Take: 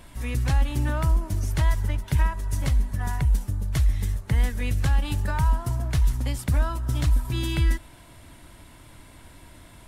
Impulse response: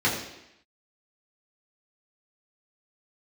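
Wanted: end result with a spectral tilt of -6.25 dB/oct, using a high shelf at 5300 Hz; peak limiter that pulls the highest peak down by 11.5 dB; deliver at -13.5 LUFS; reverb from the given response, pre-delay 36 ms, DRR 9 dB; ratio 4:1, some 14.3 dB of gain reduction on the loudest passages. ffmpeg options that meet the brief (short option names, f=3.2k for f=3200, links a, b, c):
-filter_complex "[0:a]highshelf=f=5.3k:g=-7,acompressor=threshold=-34dB:ratio=4,alimiter=level_in=9.5dB:limit=-24dB:level=0:latency=1,volume=-9.5dB,asplit=2[a][b];[1:a]atrim=start_sample=2205,adelay=36[c];[b][c]afir=irnorm=-1:irlink=0,volume=-23.5dB[d];[a][d]amix=inputs=2:normalize=0,volume=28.5dB"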